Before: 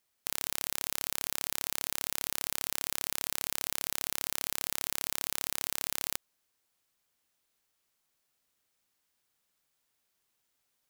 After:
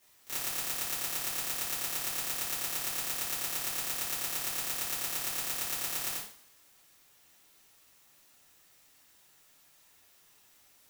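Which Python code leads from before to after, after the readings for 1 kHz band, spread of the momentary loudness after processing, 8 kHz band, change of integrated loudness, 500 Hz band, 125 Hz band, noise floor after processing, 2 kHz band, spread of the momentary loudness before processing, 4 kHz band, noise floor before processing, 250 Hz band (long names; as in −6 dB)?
+1.5 dB, 1 LU, +1.0 dB, +1.0 dB, 0.0 dB, +0.5 dB, −63 dBFS, +1.0 dB, 0 LU, 0.0 dB, −79 dBFS, 0.0 dB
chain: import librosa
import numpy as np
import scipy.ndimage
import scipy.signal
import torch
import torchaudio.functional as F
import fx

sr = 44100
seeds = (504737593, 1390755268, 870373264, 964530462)

p1 = fx.auto_swell(x, sr, attack_ms=263.0)
p2 = np.clip(10.0 ** (22.5 / 20.0) * p1, -1.0, 1.0) / 10.0 ** (22.5 / 20.0)
p3 = p1 + (p2 * librosa.db_to_amplitude(-4.0))
p4 = fx.rev_double_slope(p3, sr, seeds[0], early_s=0.47, late_s=1.7, knee_db=-25, drr_db=-10.0)
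y = p4 * librosa.db_to_amplitude(1.5)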